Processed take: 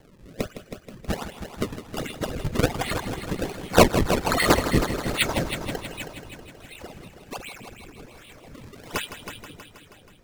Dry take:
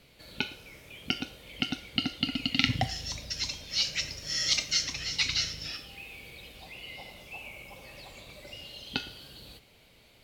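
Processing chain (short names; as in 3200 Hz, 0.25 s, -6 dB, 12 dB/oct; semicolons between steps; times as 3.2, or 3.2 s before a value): nonlinear frequency compression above 2700 Hz 1.5:1; tilt +4.5 dB/oct; in parallel at -1.5 dB: level quantiser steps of 19 dB; 3.77–4.28 on the sum: RIAA curve recording; decimation with a swept rate 34×, swing 160% 1.3 Hz; reverb removal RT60 1.9 s; rotary speaker horn 0.65 Hz; on a send: multi-head echo 0.16 s, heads first and second, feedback 56%, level -11.5 dB; on the sum: gain +1 dB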